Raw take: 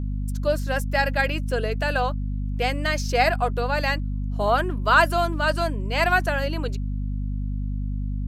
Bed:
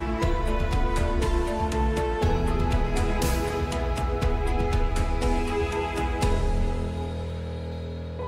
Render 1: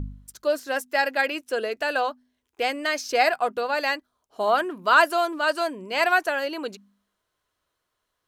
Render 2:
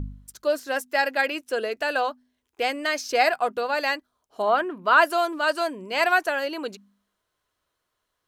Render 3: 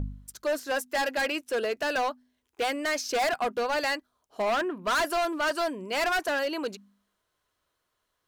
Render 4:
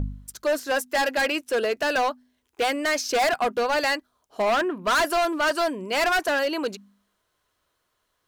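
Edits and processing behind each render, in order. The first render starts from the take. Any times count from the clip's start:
hum removal 50 Hz, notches 5
0:04.42–0:05.02: bass and treble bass 0 dB, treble −11 dB
hard clipping −23.5 dBFS, distortion −6 dB
level +4.5 dB

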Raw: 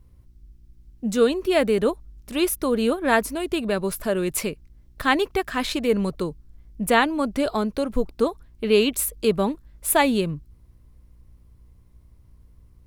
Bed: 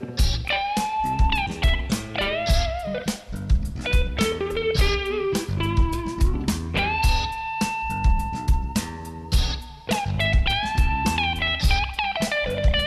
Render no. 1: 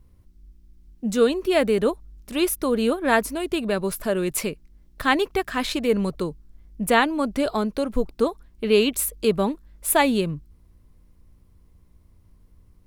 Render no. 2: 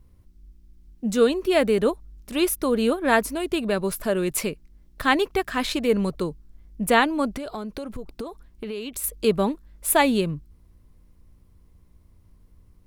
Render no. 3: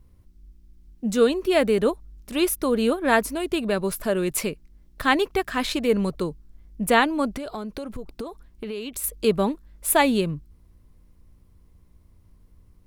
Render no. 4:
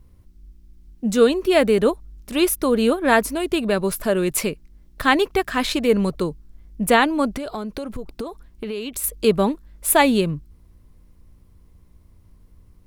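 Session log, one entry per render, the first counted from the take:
hum removal 60 Hz, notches 2
0:07.37–0:09.04: downward compressor 12 to 1, threshold −28 dBFS
no processing that can be heard
level +3.5 dB; brickwall limiter −3 dBFS, peak gain reduction 2.5 dB

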